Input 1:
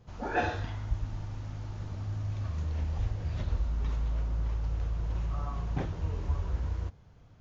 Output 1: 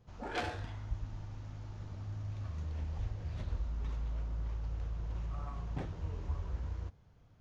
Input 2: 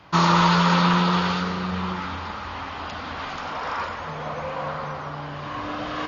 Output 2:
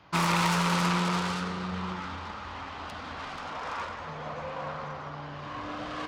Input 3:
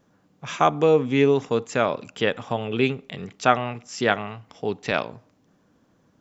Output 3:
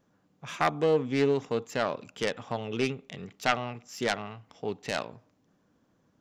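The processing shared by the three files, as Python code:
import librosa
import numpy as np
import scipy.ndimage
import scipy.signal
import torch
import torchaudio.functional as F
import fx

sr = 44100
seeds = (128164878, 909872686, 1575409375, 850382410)

y = fx.self_delay(x, sr, depth_ms=0.27)
y = y * librosa.db_to_amplitude(-6.5)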